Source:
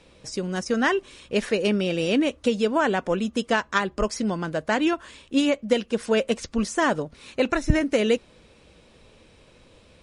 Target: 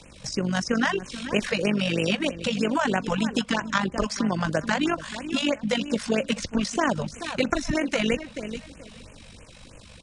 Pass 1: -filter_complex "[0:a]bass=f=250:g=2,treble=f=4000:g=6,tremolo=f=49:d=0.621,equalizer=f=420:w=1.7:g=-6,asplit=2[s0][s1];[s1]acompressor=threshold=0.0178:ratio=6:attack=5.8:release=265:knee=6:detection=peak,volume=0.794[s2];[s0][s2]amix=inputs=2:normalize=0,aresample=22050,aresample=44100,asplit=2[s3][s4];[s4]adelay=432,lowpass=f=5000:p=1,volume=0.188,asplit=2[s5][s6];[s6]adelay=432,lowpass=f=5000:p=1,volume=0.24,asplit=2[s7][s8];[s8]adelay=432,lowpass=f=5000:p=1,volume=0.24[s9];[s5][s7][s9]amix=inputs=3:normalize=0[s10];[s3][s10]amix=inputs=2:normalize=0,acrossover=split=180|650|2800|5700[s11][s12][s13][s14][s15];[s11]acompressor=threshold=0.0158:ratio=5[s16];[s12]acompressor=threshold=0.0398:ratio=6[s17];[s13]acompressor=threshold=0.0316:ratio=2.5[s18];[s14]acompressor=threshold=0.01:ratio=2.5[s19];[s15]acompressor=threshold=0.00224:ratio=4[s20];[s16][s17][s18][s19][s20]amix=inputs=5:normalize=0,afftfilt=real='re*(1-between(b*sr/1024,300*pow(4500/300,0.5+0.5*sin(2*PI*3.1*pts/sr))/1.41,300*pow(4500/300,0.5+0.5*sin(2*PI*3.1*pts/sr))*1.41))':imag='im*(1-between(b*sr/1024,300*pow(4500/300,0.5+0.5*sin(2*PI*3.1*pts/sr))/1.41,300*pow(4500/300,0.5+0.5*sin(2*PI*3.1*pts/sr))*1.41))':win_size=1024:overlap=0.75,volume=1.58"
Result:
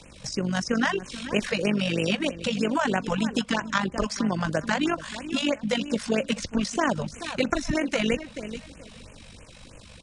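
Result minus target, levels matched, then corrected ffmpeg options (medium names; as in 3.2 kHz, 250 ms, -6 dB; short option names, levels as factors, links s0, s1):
compression: peak gain reduction +8.5 dB
-filter_complex "[0:a]bass=f=250:g=2,treble=f=4000:g=6,tremolo=f=49:d=0.621,equalizer=f=420:w=1.7:g=-6,asplit=2[s0][s1];[s1]acompressor=threshold=0.0562:ratio=6:attack=5.8:release=265:knee=6:detection=peak,volume=0.794[s2];[s0][s2]amix=inputs=2:normalize=0,aresample=22050,aresample=44100,asplit=2[s3][s4];[s4]adelay=432,lowpass=f=5000:p=1,volume=0.188,asplit=2[s5][s6];[s6]adelay=432,lowpass=f=5000:p=1,volume=0.24,asplit=2[s7][s8];[s8]adelay=432,lowpass=f=5000:p=1,volume=0.24[s9];[s5][s7][s9]amix=inputs=3:normalize=0[s10];[s3][s10]amix=inputs=2:normalize=0,acrossover=split=180|650|2800|5700[s11][s12][s13][s14][s15];[s11]acompressor=threshold=0.0158:ratio=5[s16];[s12]acompressor=threshold=0.0398:ratio=6[s17];[s13]acompressor=threshold=0.0316:ratio=2.5[s18];[s14]acompressor=threshold=0.01:ratio=2.5[s19];[s15]acompressor=threshold=0.00224:ratio=4[s20];[s16][s17][s18][s19][s20]amix=inputs=5:normalize=0,afftfilt=real='re*(1-between(b*sr/1024,300*pow(4500/300,0.5+0.5*sin(2*PI*3.1*pts/sr))/1.41,300*pow(4500/300,0.5+0.5*sin(2*PI*3.1*pts/sr))*1.41))':imag='im*(1-between(b*sr/1024,300*pow(4500/300,0.5+0.5*sin(2*PI*3.1*pts/sr))/1.41,300*pow(4500/300,0.5+0.5*sin(2*PI*3.1*pts/sr))*1.41))':win_size=1024:overlap=0.75,volume=1.58"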